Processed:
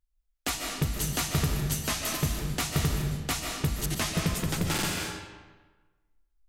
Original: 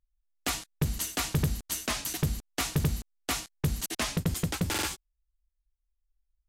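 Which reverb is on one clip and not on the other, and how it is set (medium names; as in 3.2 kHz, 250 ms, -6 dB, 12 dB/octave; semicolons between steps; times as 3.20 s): algorithmic reverb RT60 1.3 s, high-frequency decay 0.75×, pre-delay 105 ms, DRR 1 dB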